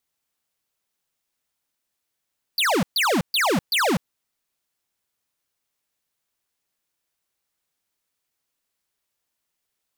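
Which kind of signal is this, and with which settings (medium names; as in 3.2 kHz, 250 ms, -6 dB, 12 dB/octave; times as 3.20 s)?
burst of laser zaps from 4.9 kHz, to 150 Hz, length 0.25 s square, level -20 dB, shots 4, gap 0.13 s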